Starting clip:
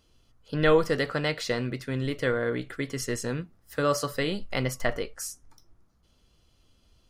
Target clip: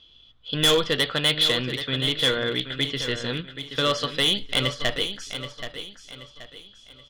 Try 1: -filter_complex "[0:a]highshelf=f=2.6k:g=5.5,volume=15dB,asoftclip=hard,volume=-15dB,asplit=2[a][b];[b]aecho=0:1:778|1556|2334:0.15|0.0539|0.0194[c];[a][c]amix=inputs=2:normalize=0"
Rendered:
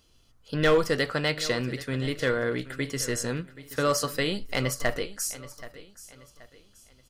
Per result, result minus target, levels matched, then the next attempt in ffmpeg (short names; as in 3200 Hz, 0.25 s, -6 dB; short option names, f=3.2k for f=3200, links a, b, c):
4000 Hz band -8.5 dB; echo-to-direct -6.5 dB
-filter_complex "[0:a]lowpass=f=3.4k:t=q:w=13,highshelf=f=2.6k:g=5.5,volume=15dB,asoftclip=hard,volume=-15dB,asplit=2[a][b];[b]aecho=0:1:778|1556|2334:0.15|0.0539|0.0194[c];[a][c]amix=inputs=2:normalize=0"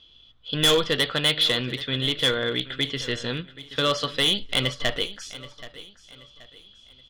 echo-to-direct -6.5 dB
-filter_complex "[0:a]lowpass=f=3.4k:t=q:w=13,highshelf=f=2.6k:g=5.5,volume=15dB,asoftclip=hard,volume=-15dB,asplit=2[a][b];[b]aecho=0:1:778|1556|2334|3112:0.316|0.114|0.041|0.0148[c];[a][c]amix=inputs=2:normalize=0"